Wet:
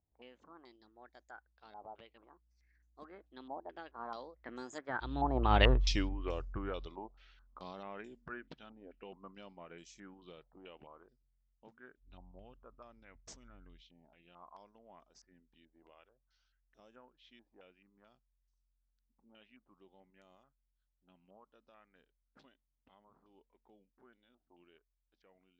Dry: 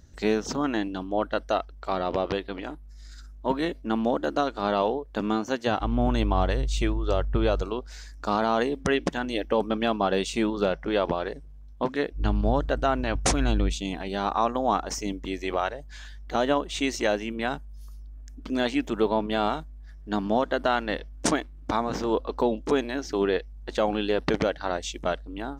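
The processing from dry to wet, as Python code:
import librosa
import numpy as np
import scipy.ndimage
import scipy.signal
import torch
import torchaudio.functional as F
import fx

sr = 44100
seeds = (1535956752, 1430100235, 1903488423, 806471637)

y = fx.fade_out_tail(x, sr, length_s=2.19)
y = fx.doppler_pass(y, sr, speed_mps=47, closest_m=5.7, pass_at_s=5.68)
y = fx.filter_held_lowpass(y, sr, hz=4.6, low_hz=840.0, high_hz=6700.0)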